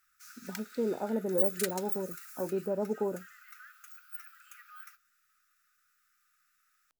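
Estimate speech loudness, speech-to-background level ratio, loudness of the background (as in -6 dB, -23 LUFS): -34.5 LUFS, 0.5 dB, -35.0 LUFS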